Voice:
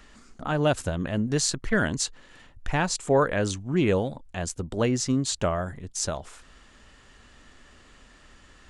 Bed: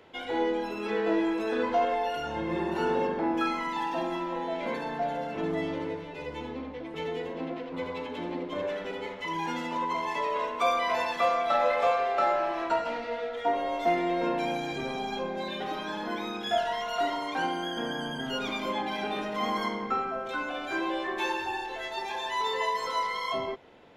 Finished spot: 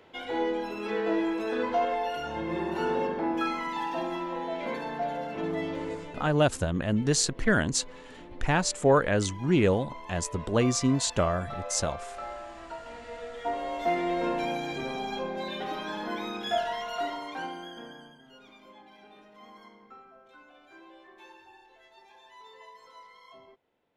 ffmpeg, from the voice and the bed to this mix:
-filter_complex "[0:a]adelay=5750,volume=1[s0];[1:a]volume=3.98,afade=t=out:st=6.11:d=0.21:silence=0.237137,afade=t=in:st=12.78:d=1.32:silence=0.223872,afade=t=out:st=16.48:d=1.72:silence=0.0891251[s1];[s0][s1]amix=inputs=2:normalize=0"

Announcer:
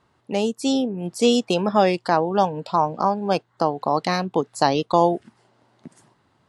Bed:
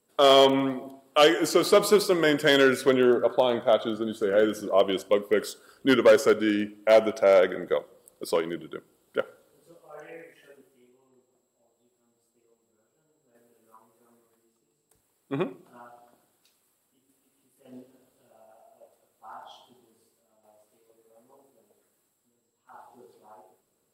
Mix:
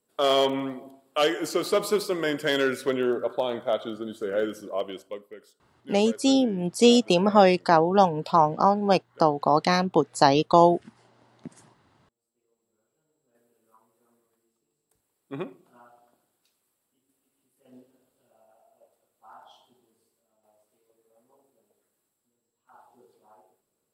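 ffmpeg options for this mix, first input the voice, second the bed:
-filter_complex "[0:a]adelay=5600,volume=1.06[s0];[1:a]volume=4.22,afade=t=out:st=4.4:d=0.97:silence=0.125893,afade=t=in:st=12:d=0.75:silence=0.141254[s1];[s0][s1]amix=inputs=2:normalize=0"

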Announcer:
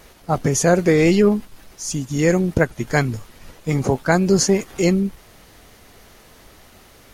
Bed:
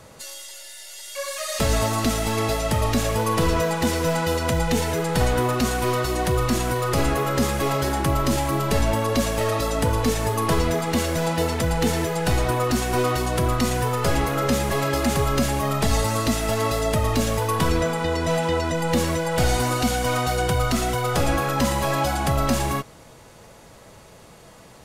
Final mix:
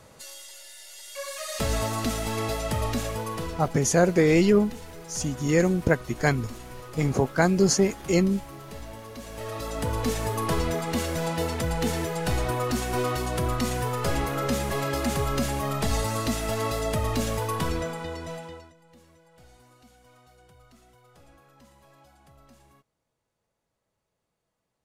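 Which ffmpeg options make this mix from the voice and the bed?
-filter_complex "[0:a]adelay=3300,volume=0.596[s0];[1:a]volume=2.82,afade=t=out:st=2.84:d=0.89:silence=0.199526,afade=t=in:st=9.21:d=0.88:silence=0.188365,afade=t=out:st=17.41:d=1.33:silence=0.0354813[s1];[s0][s1]amix=inputs=2:normalize=0"

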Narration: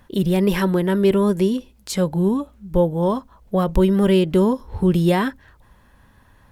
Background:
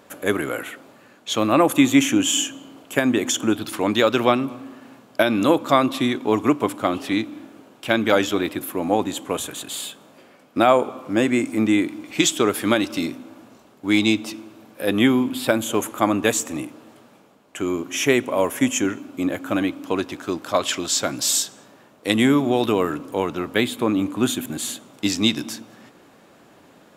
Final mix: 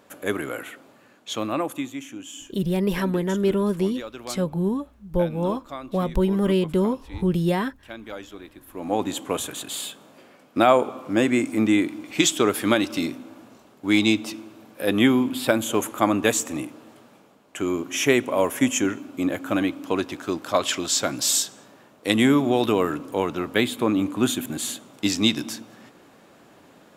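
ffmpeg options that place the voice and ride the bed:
-filter_complex "[0:a]adelay=2400,volume=0.562[s0];[1:a]volume=4.73,afade=t=out:st=1.17:d=0.77:silence=0.188365,afade=t=in:st=8.66:d=0.44:silence=0.125893[s1];[s0][s1]amix=inputs=2:normalize=0"

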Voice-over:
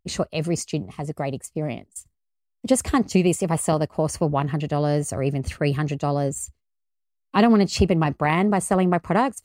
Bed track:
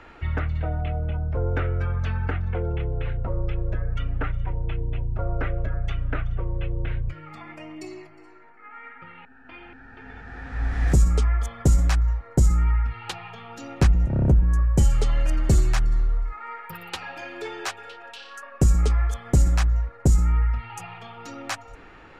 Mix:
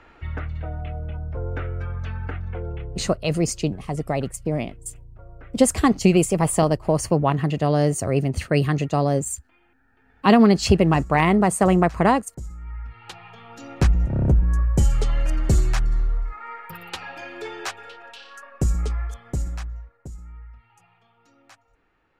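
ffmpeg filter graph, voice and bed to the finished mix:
-filter_complex "[0:a]adelay=2900,volume=1.33[s0];[1:a]volume=4.73,afade=t=out:st=2.69:d=0.58:silence=0.211349,afade=t=in:st=12.6:d=1.26:silence=0.133352,afade=t=out:st=17.84:d=2.26:silence=0.0944061[s1];[s0][s1]amix=inputs=2:normalize=0"

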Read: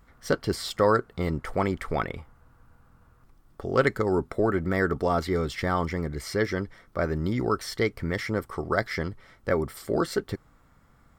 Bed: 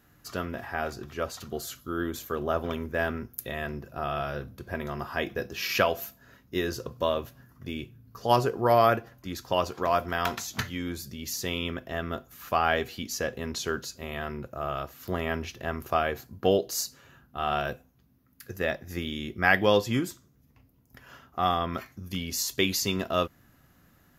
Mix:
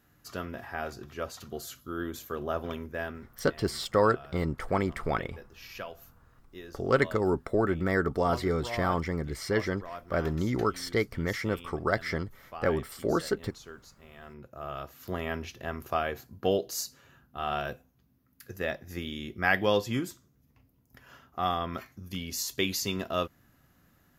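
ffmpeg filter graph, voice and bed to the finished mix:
-filter_complex "[0:a]adelay=3150,volume=0.794[s0];[1:a]volume=2.82,afade=t=out:st=2.7:d=0.83:silence=0.237137,afade=t=in:st=14.16:d=0.81:silence=0.223872[s1];[s0][s1]amix=inputs=2:normalize=0"

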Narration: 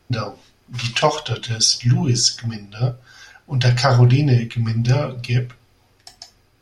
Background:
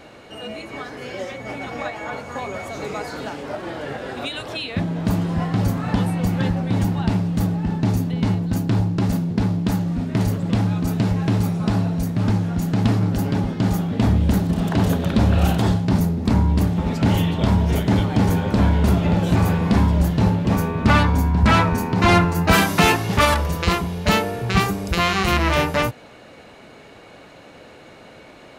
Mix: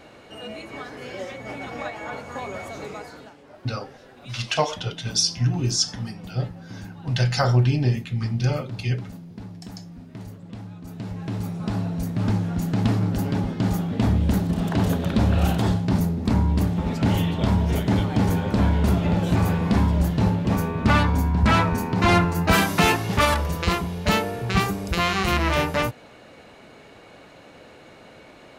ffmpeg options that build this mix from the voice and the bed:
-filter_complex "[0:a]adelay=3550,volume=0.531[s0];[1:a]volume=3.76,afade=t=out:st=2.64:d=0.7:silence=0.188365,afade=t=in:st=10.81:d=1.5:silence=0.177828[s1];[s0][s1]amix=inputs=2:normalize=0"

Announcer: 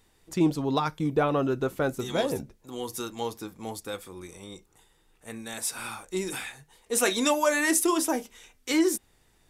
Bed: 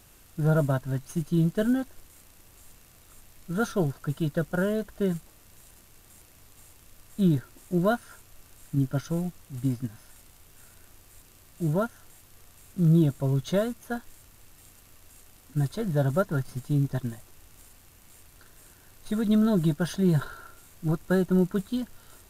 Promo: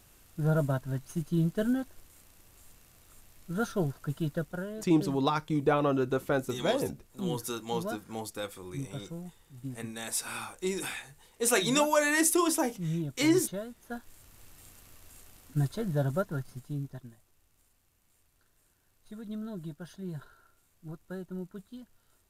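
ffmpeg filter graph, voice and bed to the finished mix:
-filter_complex "[0:a]adelay=4500,volume=0.841[s0];[1:a]volume=2.51,afade=t=out:st=4.31:d=0.35:silence=0.375837,afade=t=in:st=13.73:d=0.71:silence=0.251189,afade=t=out:st=15.25:d=1.83:silence=0.158489[s1];[s0][s1]amix=inputs=2:normalize=0"

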